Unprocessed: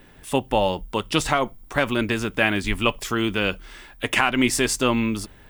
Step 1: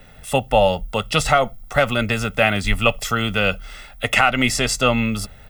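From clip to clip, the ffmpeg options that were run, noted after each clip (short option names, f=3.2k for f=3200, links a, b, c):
-filter_complex "[0:a]aecho=1:1:1.5:0.75,acrossover=split=210|7300[a][b][c];[c]alimiter=level_in=0.5dB:limit=-24dB:level=0:latency=1:release=360,volume=-0.5dB[d];[a][b][d]amix=inputs=3:normalize=0,volume=2.5dB"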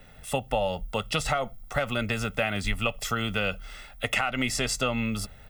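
-af "acompressor=threshold=-17dB:ratio=6,volume=-5.5dB"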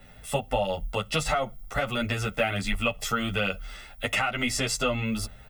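-filter_complex "[0:a]asplit=2[a][b];[b]adelay=10.2,afreqshift=2.5[c];[a][c]amix=inputs=2:normalize=1,volume=3.5dB"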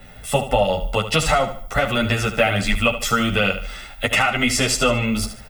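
-af "aecho=1:1:74|148|222|296:0.282|0.101|0.0365|0.0131,volume=8dB"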